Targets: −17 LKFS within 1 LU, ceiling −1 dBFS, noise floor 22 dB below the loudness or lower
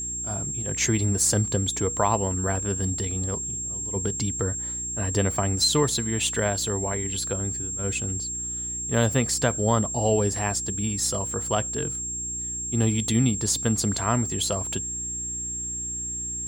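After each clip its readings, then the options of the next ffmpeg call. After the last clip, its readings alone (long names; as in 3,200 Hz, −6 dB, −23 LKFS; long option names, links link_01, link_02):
mains hum 60 Hz; hum harmonics up to 360 Hz; level of the hum −39 dBFS; interfering tone 7,500 Hz; level of the tone −29 dBFS; integrated loudness −25.0 LKFS; sample peak −7.5 dBFS; target loudness −17.0 LKFS
→ -af "bandreject=frequency=60:width_type=h:width=4,bandreject=frequency=120:width_type=h:width=4,bandreject=frequency=180:width_type=h:width=4,bandreject=frequency=240:width_type=h:width=4,bandreject=frequency=300:width_type=h:width=4,bandreject=frequency=360:width_type=h:width=4"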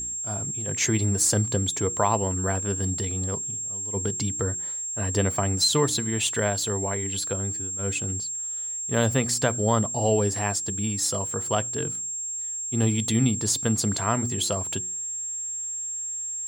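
mains hum none found; interfering tone 7,500 Hz; level of the tone −29 dBFS
→ -af "bandreject=frequency=7500:width=30"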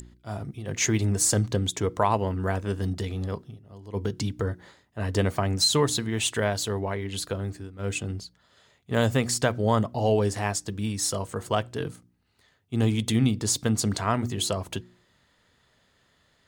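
interfering tone none found; integrated loudness −26.5 LKFS; sample peak −8.5 dBFS; target loudness −17.0 LKFS
→ -af "volume=9.5dB,alimiter=limit=-1dB:level=0:latency=1"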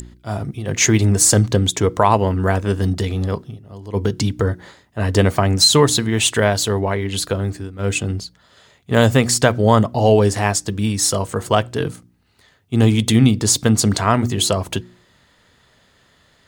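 integrated loudness −17.0 LKFS; sample peak −1.0 dBFS; background noise floor −57 dBFS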